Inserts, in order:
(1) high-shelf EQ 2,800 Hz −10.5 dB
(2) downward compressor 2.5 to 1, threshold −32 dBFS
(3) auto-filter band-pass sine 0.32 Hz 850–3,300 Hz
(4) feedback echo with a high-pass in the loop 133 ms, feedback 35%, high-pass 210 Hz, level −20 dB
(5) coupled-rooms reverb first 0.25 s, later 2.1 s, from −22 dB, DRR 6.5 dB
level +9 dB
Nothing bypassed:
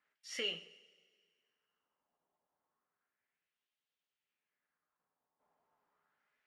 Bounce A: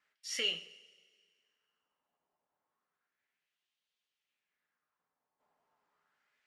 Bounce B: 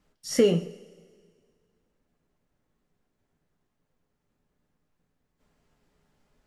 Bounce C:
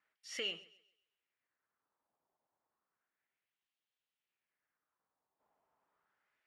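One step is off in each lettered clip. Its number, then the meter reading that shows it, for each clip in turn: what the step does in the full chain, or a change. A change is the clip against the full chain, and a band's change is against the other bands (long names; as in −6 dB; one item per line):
1, 8 kHz band +7.0 dB
3, 4 kHz band −17.0 dB
5, change in momentary loudness spread −5 LU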